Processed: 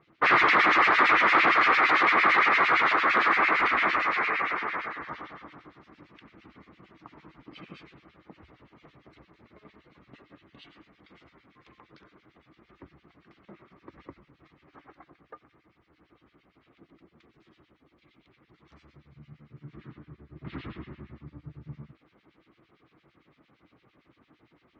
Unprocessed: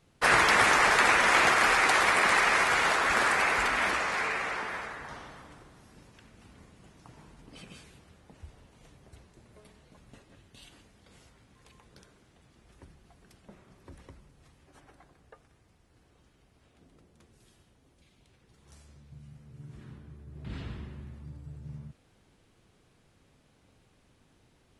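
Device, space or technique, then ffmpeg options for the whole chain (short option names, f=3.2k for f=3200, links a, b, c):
guitar amplifier with harmonic tremolo: -filter_complex "[0:a]acrossover=split=1800[a][b];[a]aeval=exprs='val(0)*(1-1/2+1/2*cos(2*PI*8.8*n/s))':c=same[c];[b]aeval=exprs='val(0)*(1-1/2-1/2*cos(2*PI*8.8*n/s))':c=same[d];[c][d]amix=inputs=2:normalize=0,asoftclip=type=tanh:threshold=-23.5dB,highpass=84,equalizer=f=93:t=q:w=4:g=-9,equalizer=f=320:t=q:w=4:g=9,equalizer=f=1.2k:t=q:w=4:g=9,equalizer=f=2.1k:t=q:w=4:g=7,lowpass=f=4.1k:w=0.5412,lowpass=f=4.1k:w=1.3066,volume=5dB"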